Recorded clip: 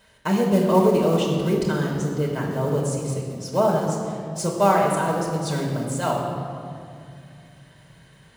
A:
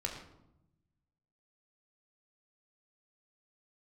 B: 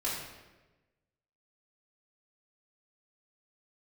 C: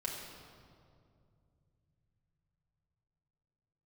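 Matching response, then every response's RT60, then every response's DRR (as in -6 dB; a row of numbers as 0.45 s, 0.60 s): C; 0.85 s, 1.2 s, 2.3 s; 0.0 dB, -8.0 dB, -3.0 dB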